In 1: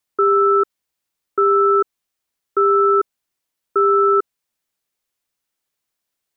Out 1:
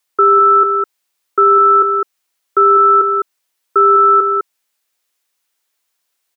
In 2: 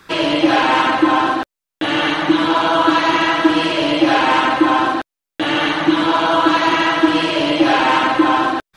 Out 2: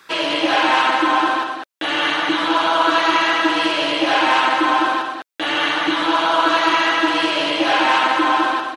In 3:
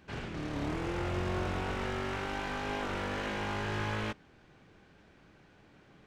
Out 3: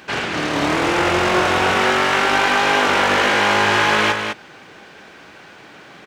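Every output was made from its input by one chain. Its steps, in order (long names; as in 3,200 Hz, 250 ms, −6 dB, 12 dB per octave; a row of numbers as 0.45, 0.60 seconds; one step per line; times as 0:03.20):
high-pass filter 700 Hz 6 dB per octave
on a send: single-tap delay 204 ms −6 dB
on the sum: normalise the peak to −3 dBFS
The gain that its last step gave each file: +8.0, 0.0, +22.0 decibels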